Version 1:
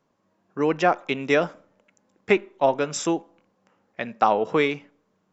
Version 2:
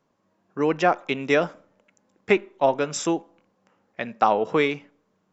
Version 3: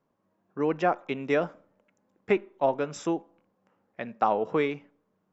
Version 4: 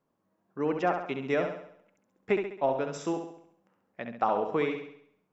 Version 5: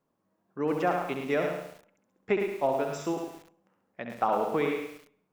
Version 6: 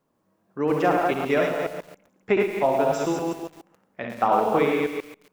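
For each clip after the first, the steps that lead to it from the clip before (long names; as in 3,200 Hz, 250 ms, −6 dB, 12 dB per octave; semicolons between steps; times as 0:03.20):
no processing that can be heard
high-shelf EQ 2,700 Hz −10.5 dB; level −4 dB
flutter between parallel walls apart 11.6 metres, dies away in 0.65 s; level −3 dB
feedback echo at a low word length 108 ms, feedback 35%, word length 8 bits, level −6 dB
delay that plays each chunk backwards 139 ms, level −3 dB; level +5 dB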